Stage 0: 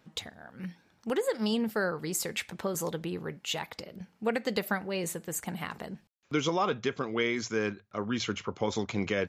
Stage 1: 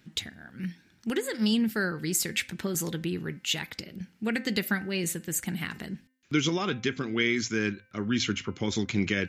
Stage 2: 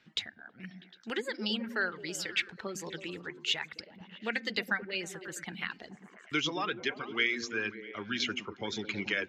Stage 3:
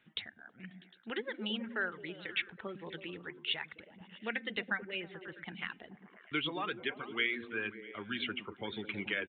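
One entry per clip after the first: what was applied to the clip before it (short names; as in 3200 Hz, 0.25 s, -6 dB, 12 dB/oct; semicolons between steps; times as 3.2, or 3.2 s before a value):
band shelf 740 Hz -11.5 dB; de-hum 258.6 Hz, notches 11; gain +5 dB
three-band isolator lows -13 dB, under 460 Hz, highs -23 dB, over 5400 Hz; reverb removal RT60 1.6 s; delay with a stepping band-pass 0.108 s, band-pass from 200 Hz, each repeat 0.7 oct, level -4.5 dB
downsampling 8000 Hz; gain -3.5 dB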